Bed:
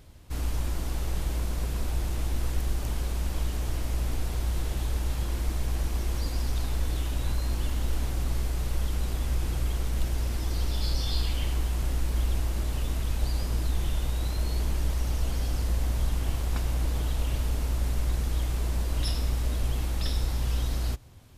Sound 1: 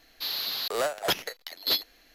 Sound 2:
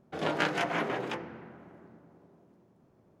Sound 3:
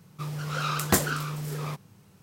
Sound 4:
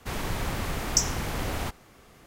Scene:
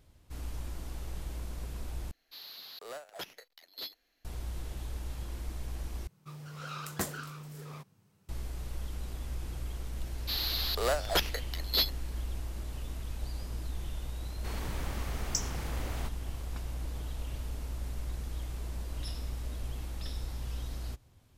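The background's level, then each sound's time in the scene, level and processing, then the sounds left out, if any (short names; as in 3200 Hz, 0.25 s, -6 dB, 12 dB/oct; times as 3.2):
bed -10 dB
2.11 replace with 1 -16 dB
6.07 replace with 3 -12 dB
10.07 add 1 -2 dB
14.38 add 4 -9.5 dB
not used: 2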